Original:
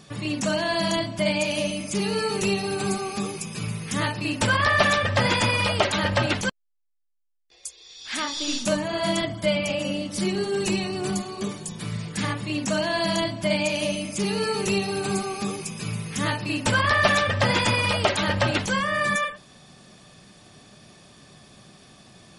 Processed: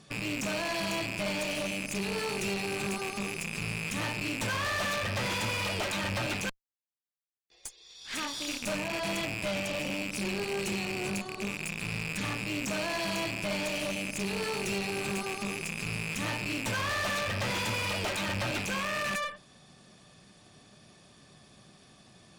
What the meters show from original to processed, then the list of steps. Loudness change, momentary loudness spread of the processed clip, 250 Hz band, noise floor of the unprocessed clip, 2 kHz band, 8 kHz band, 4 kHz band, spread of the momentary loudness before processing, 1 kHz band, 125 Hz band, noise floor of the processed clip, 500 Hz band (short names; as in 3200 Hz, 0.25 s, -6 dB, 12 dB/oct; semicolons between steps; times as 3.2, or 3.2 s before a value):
-7.5 dB, 4 LU, -8.5 dB, -56 dBFS, -7.0 dB, -6.0 dB, -7.5 dB, 11 LU, -9.5 dB, -9.0 dB, -59 dBFS, -9.5 dB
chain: rattling part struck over -39 dBFS, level -13 dBFS; tube stage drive 27 dB, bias 0.75; gain -2 dB